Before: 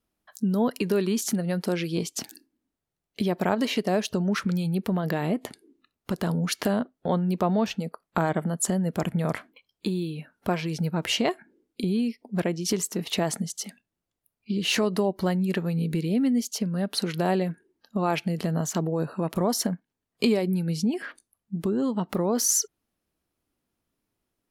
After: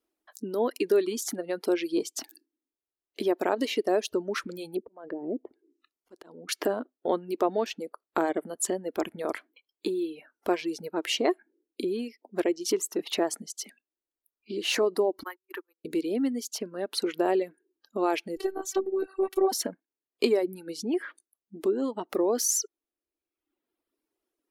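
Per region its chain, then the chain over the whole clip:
0:04.76–0:06.49: volume swells 479 ms + treble cut that deepens with the level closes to 470 Hz, closed at −29 dBFS
0:15.23–0:15.85: high-pass filter 1,500 Hz + noise gate −45 dBFS, range −35 dB + drawn EQ curve 180 Hz 0 dB, 370 Hz +14 dB, 670 Hz −3 dB, 1,000 Hz +10 dB, 2,900 Hz −8 dB, 5,900 Hz −13 dB, 8,800 Hz −14 dB, 13,000 Hz +9 dB
0:18.36–0:19.52: comb filter 5.4 ms, depth 55% + phases set to zero 383 Hz
whole clip: reverb reduction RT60 1.1 s; low shelf with overshoot 230 Hz −12.5 dB, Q 3; level −2.5 dB

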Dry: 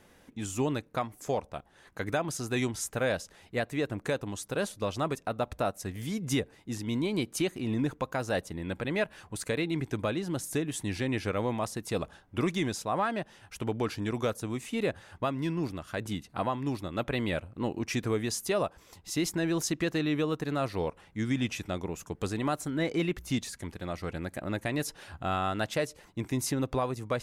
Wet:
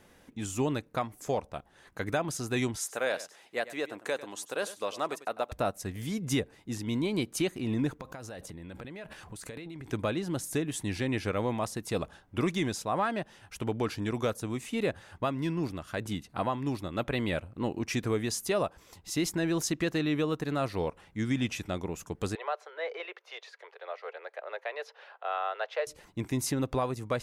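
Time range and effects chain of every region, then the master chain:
0:02.77–0:05.52: high-pass filter 420 Hz + single-tap delay 98 ms −15.5 dB
0:07.99–0:09.93: downward compressor 4 to 1, threshold −43 dBFS + transient designer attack +3 dB, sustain +11 dB
0:22.35–0:25.87: Butterworth high-pass 430 Hz 72 dB per octave + high-frequency loss of the air 270 metres
whole clip: no processing

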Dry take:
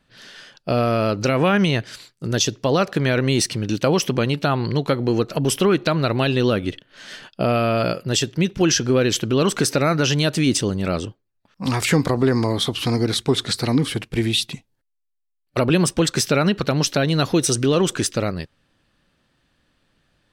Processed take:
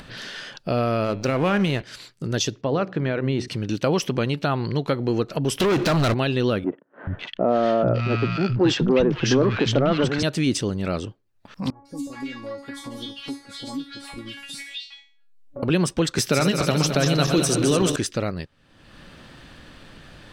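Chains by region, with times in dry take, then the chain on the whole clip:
0:01.04–0:01.82: slack as between gear wheels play −27.5 dBFS + hum removal 112.2 Hz, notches 37
0:02.61–0:03.48: high-pass filter 48 Hz + head-to-tape spacing loss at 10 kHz 24 dB + hum removal 61.85 Hz, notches 7
0:05.60–0:06.14: downward compressor, threshold −20 dBFS + leveller curve on the samples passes 5
0:06.64–0:10.23: leveller curve on the samples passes 2 + high-frequency loss of the air 160 metres + three-band delay without the direct sound mids, lows, highs 430/550 ms, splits 190/1,300 Hz
0:11.70–0:15.63: tuned comb filter 280 Hz, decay 0.32 s, mix 100% + three-band delay without the direct sound lows, highs, mids 150/410 ms, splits 850/4,700 Hz
0:16.18–0:17.96: feedback delay that plays each chunk backwards 109 ms, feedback 77%, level −7 dB + high-shelf EQ 9,000 Hz +9 dB + multiband upward and downward compressor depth 40%
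whole clip: high-shelf EQ 7,500 Hz −7 dB; upward compression, threshold −22 dBFS; level −3 dB

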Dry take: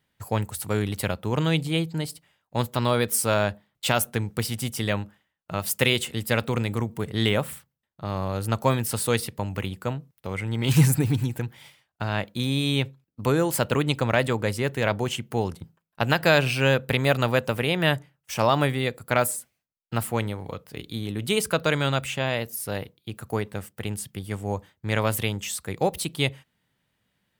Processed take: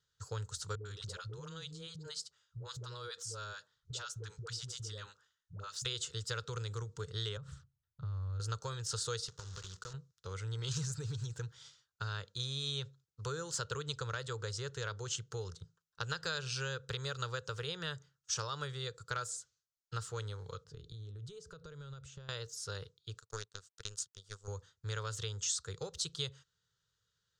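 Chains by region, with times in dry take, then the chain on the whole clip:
0:00.75–0:05.85: all-pass dispersion highs, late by 103 ms, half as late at 410 Hz + downward compressor 5 to 1, threshold −32 dBFS
0:07.37–0:08.40: low-pass filter 1,500 Hz 6 dB per octave + low shelf with overshoot 180 Hz +11.5 dB, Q 1.5 + downward compressor 16 to 1, threshold −27 dBFS
0:09.28–0:09.94: one scale factor per block 3 bits + downward compressor 10 to 1, threshold −32 dBFS
0:20.64–0:22.29: downward compressor 16 to 1, threshold −37 dBFS + tilt shelving filter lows +8 dB, about 670 Hz
0:23.19–0:24.48: high-shelf EQ 2,800 Hz +9.5 dB + power curve on the samples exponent 2
whole clip: downward compressor 4 to 1, threshold −25 dBFS; drawn EQ curve 110 Hz 0 dB, 170 Hz −7 dB, 240 Hz −27 dB, 450 Hz 0 dB, 690 Hz −18 dB, 1,400 Hz +5 dB, 2,200 Hz −14 dB, 3,700 Hz +5 dB, 6,800 Hz +11 dB, 12,000 Hz −25 dB; level −7.5 dB

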